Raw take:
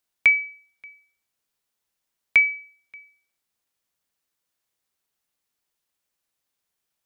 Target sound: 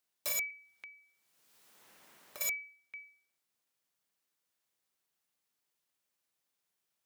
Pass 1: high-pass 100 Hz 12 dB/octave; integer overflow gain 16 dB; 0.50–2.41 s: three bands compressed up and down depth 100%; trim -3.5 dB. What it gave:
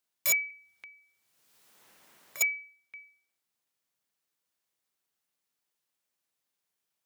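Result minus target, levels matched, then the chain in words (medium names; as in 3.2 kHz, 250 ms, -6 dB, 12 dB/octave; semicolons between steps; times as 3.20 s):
integer overflow: distortion -8 dB
high-pass 100 Hz 12 dB/octave; integer overflow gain 25 dB; 0.50–2.41 s: three bands compressed up and down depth 100%; trim -3.5 dB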